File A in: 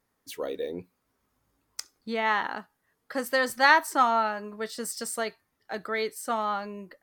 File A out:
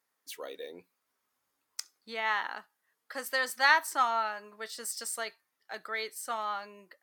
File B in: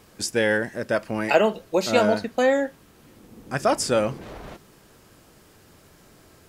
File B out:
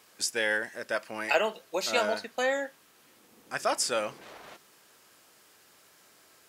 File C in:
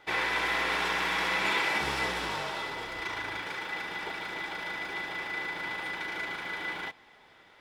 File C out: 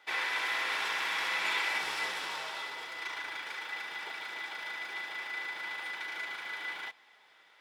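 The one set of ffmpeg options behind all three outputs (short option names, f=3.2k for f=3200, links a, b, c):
-af "highpass=f=1.2k:p=1,volume=-1.5dB"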